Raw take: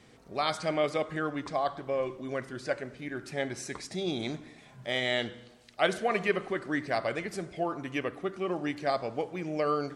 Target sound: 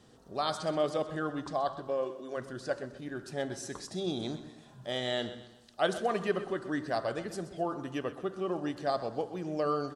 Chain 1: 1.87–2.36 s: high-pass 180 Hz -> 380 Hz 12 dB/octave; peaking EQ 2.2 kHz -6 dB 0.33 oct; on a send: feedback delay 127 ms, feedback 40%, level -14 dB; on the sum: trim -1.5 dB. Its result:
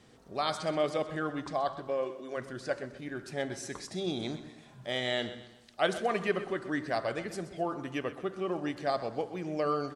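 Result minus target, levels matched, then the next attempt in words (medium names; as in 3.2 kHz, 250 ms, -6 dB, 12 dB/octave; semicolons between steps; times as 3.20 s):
2 kHz band +2.5 dB
1.87–2.36 s: high-pass 180 Hz -> 380 Hz 12 dB/octave; peaking EQ 2.2 kHz -16.5 dB 0.33 oct; on a send: feedback delay 127 ms, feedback 40%, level -14 dB; on the sum: trim -1.5 dB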